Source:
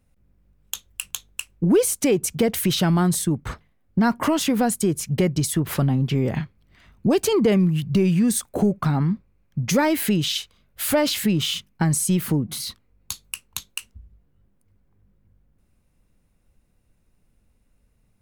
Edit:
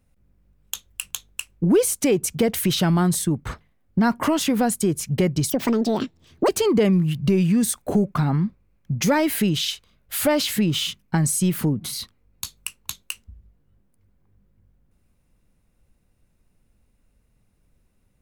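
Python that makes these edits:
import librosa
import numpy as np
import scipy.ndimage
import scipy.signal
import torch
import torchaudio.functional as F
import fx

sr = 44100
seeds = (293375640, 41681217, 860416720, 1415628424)

y = fx.edit(x, sr, fx.speed_span(start_s=5.5, length_s=1.66, speed=1.68), tone=tone)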